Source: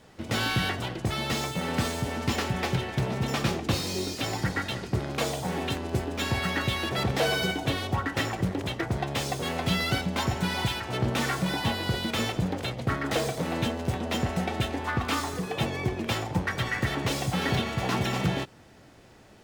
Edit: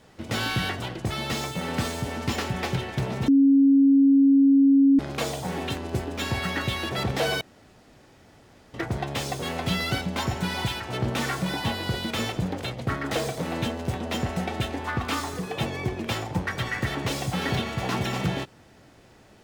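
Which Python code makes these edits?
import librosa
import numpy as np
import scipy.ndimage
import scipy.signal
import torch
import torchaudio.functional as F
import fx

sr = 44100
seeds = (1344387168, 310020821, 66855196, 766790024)

y = fx.edit(x, sr, fx.bleep(start_s=3.28, length_s=1.71, hz=275.0, db=-13.5),
    fx.room_tone_fill(start_s=7.41, length_s=1.33), tone=tone)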